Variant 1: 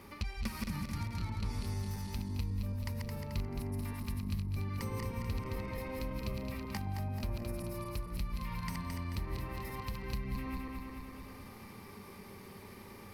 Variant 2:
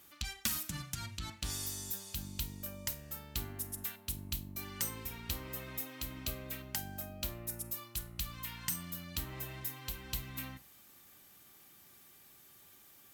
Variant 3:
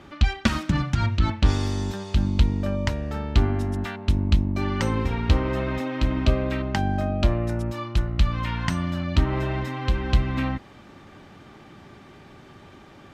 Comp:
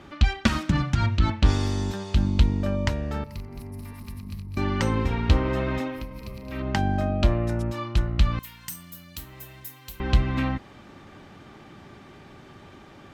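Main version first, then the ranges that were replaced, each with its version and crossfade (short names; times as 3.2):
3
3.24–4.57 from 1
5.94–6.57 from 1, crossfade 0.24 s
8.39–10 from 2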